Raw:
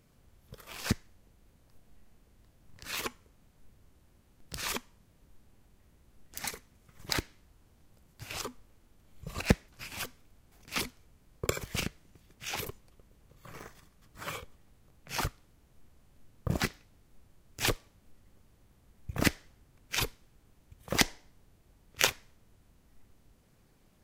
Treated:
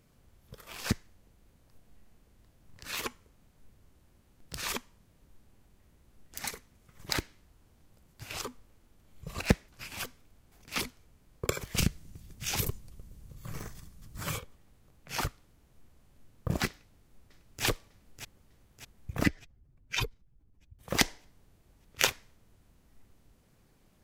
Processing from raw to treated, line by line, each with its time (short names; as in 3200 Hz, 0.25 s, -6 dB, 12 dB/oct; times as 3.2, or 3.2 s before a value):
11.78–14.39 tone controls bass +12 dB, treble +8 dB
16.7–17.64 echo throw 0.6 s, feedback 55%, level -8 dB
19.24–20.79 spectral contrast raised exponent 1.7